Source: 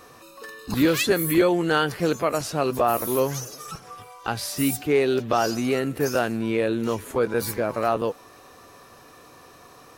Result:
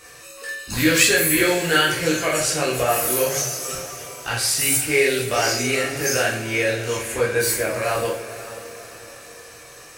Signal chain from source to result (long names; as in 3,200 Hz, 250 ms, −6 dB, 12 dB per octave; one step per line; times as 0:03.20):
octave-band graphic EQ 250/1,000/2,000/8,000 Hz −10/−8/+7/+10 dB
feedback delay with all-pass diffusion 508 ms, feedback 49%, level −14.5 dB
convolution reverb, pre-delay 11 ms, DRR −5 dB
level −1 dB